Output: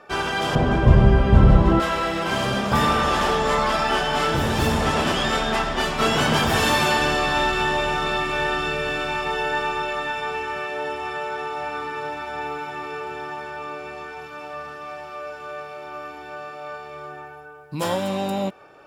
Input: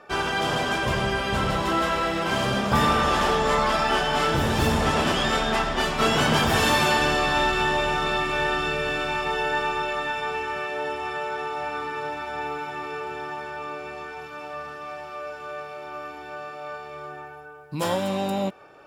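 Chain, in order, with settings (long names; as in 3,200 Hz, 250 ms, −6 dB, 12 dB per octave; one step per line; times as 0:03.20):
0:00.55–0:01.80: spectral tilt −4.5 dB per octave
level +1 dB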